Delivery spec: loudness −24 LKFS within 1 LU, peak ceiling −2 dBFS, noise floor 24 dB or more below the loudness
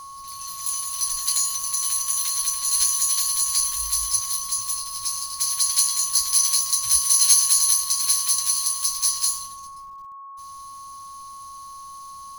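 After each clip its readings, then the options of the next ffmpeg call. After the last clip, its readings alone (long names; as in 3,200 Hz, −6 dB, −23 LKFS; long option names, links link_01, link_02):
interfering tone 1,100 Hz; level of the tone −37 dBFS; integrated loudness −19.5 LKFS; sample peak −2.0 dBFS; target loudness −24.0 LKFS
→ -af "bandreject=frequency=1100:width=30"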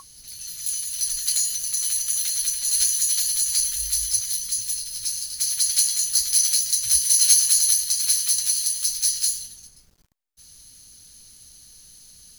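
interfering tone none found; integrated loudness −19.5 LKFS; sample peak −2.0 dBFS; target loudness −24.0 LKFS
→ -af "volume=-4.5dB"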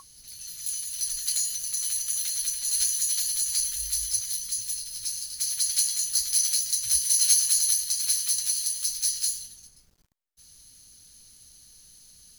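integrated loudness −24.0 LKFS; sample peak −6.5 dBFS; background noise floor −57 dBFS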